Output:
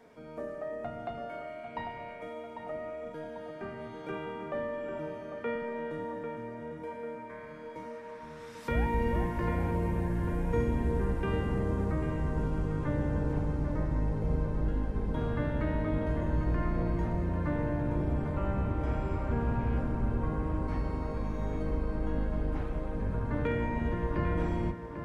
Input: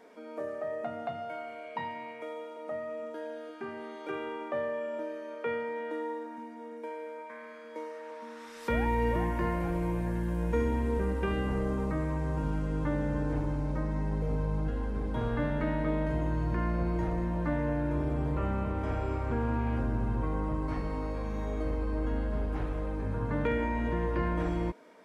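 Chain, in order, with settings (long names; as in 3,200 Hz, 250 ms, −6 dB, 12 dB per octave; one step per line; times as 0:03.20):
sub-octave generator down 1 octave, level 0 dB
tape delay 796 ms, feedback 56%, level −7 dB, low-pass 2,700 Hz
level −2.5 dB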